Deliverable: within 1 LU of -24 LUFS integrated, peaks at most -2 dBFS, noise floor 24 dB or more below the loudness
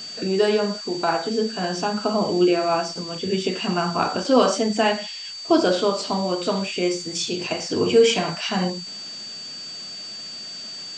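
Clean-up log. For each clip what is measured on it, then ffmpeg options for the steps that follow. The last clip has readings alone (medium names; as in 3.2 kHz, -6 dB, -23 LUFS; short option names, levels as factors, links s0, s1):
steady tone 4.6 kHz; tone level -33 dBFS; noise floor -35 dBFS; noise floor target -47 dBFS; loudness -23.0 LUFS; peak level -4.5 dBFS; loudness target -24.0 LUFS
-> -af "bandreject=f=4600:w=30"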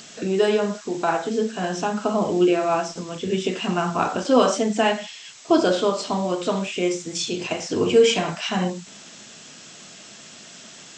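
steady tone not found; noise floor -44 dBFS; noise floor target -47 dBFS
-> -af "afftdn=nr=6:nf=-44"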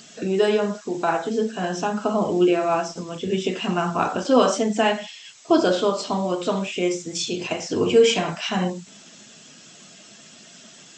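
noise floor -47 dBFS; loudness -22.5 LUFS; peak level -5.0 dBFS; loudness target -24.0 LUFS
-> -af "volume=0.841"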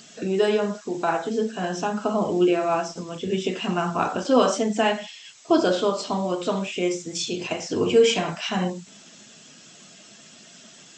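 loudness -24.0 LUFS; peak level -6.5 dBFS; noise floor -49 dBFS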